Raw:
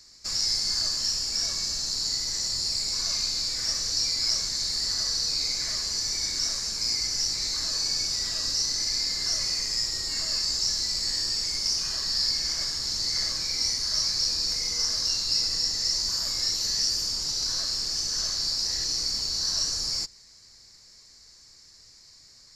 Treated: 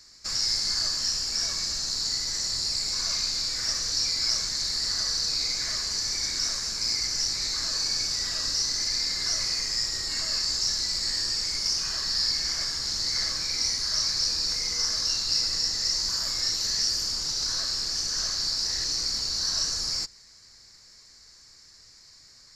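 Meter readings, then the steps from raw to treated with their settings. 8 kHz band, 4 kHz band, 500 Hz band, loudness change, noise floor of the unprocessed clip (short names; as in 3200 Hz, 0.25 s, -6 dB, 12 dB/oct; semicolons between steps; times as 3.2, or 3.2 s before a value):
-0.5 dB, 0.0 dB, +0.5 dB, 0.0 dB, -53 dBFS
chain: bell 1500 Hz +4.5 dB 0.98 oct; Doppler distortion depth 0.13 ms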